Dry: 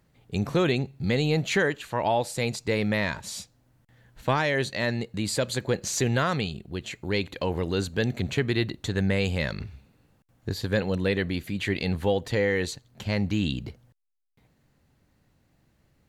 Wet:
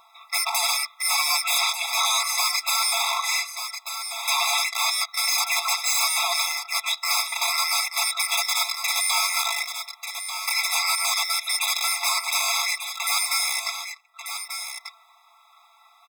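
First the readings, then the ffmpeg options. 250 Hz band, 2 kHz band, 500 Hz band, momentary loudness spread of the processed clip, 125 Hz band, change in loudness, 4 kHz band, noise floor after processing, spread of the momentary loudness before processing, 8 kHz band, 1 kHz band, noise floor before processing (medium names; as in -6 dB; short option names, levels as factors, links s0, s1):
under -40 dB, +5.5 dB, -14.5 dB, 10 LU, under -40 dB, +5.0 dB, +12.5 dB, -57 dBFS, 10 LU, +15.0 dB, +7.0 dB, -67 dBFS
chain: -filter_complex "[0:a]afftfilt=real='real(if(between(b,1,1012),(2*floor((b-1)/92)+1)*92-b,b),0)':imag='imag(if(between(b,1,1012),(2*floor((b-1)/92)+1)*92-b,b),0)*if(between(b,1,1012),-1,1)':win_size=2048:overlap=0.75,asplit=2[s0][s1];[s1]acrusher=bits=4:mix=0:aa=0.000001,volume=0.355[s2];[s0][s2]amix=inputs=2:normalize=0,bass=f=250:g=4,treble=f=4000:g=-9,acompressor=threshold=0.0631:ratio=4,aeval=exprs='0.211*sin(PI/2*8.91*val(0)/0.211)':c=same,aecho=1:1:4.5:0.79,asubboost=boost=4.5:cutoff=100,asplit=2[s3][s4];[s4]aecho=0:1:1190:0.299[s5];[s3][s5]amix=inputs=2:normalize=0,asoftclip=type=tanh:threshold=0.299,afftfilt=real='re*eq(mod(floor(b*sr/1024/670),2),1)':imag='im*eq(mod(floor(b*sr/1024/670),2),1)':win_size=1024:overlap=0.75,volume=0.794"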